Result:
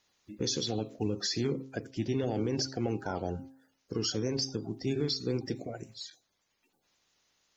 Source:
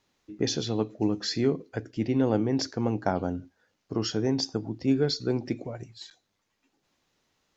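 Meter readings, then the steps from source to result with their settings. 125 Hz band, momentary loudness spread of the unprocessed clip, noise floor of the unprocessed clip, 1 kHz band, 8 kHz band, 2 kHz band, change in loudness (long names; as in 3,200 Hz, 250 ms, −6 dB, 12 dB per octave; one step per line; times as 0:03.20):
−4.0 dB, 12 LU, −78 dBFS, −6.5 dB, can't be measured, −4.5 dB, −5.0 dB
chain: spectral magnitudes quantised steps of 30 dB
high-shelf EQ 4,700 Hz +10 dB
hum removal 133.1 Hz, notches 10
brickwall limiter −19 dBFS, peak gain reduction 8 dB
level −2.5 dB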